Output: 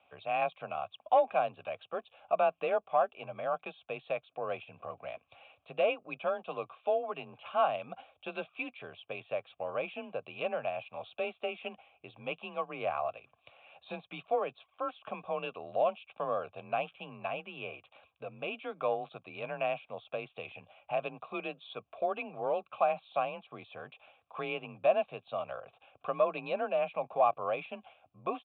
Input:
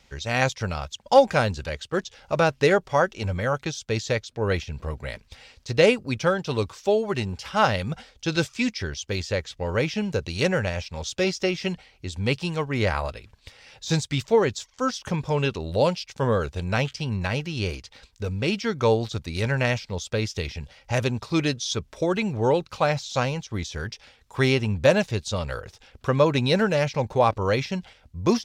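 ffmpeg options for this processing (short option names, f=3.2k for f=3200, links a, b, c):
-filter_complex "[0:a]asplit=2[a][b];[b]acompressor=threshold=-31dB:ratio=6,volume=0.5dB[c];[a][c]amix=inputs=2:normalize=0,asoftclip=type=tanh:threshold=-6dB,afreqshift=31,aresample=8000,aresample=44100,asplit=3[d][e][f];[d]bandpass=f=730:t=q:w=8,volume=0dB[g];[e]bandpass=f=1.09k:t=q:w=8,volume=-6dB[h];[f]bandpass=f=2.44k:t=q:w=8,volume=-9dB[i];[g][h][i]amix=inputs=3:normalize=0"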